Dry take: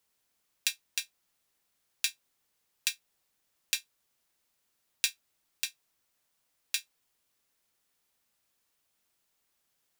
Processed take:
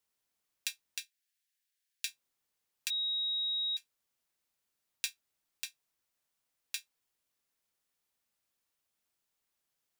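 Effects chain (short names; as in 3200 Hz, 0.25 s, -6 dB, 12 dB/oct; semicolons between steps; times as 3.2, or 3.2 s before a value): 0.98–2.08 elliptic high-pass 1600 Hz; 2.9–3.77 bleep 3800 Hz -23.5 dBFS; gain -7 dB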